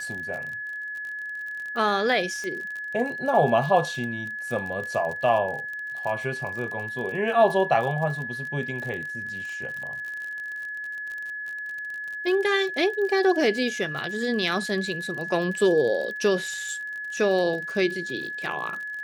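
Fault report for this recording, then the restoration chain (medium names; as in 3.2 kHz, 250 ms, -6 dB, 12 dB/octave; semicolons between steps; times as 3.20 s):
crackle 45 per s -32 dBFS
whine 1.7 kHz -31 dBFS
2.44 s: pop -21 dBFS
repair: de-click; band-stop 1.7 kHz, Q 30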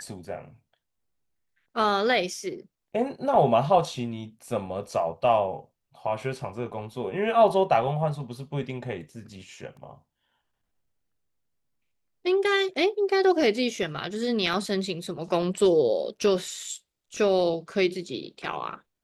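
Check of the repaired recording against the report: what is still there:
nothing left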